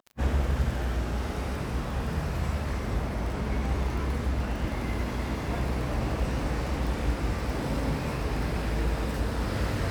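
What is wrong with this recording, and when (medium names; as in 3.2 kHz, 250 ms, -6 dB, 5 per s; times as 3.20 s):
crackle 25 per s -34 dBFS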